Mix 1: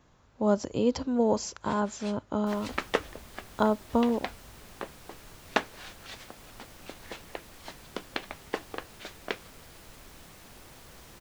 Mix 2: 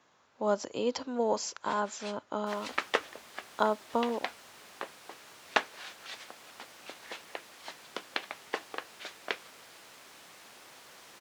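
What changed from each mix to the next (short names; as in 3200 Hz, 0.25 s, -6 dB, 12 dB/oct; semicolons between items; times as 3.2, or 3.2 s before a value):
master: add weighting filter A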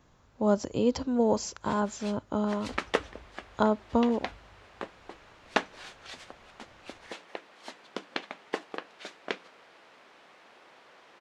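second sound: add BPF 460–2900 Hz; master: remove weighting filter A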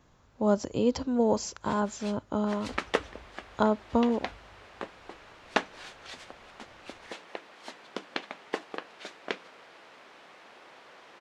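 second sound +3.5 dB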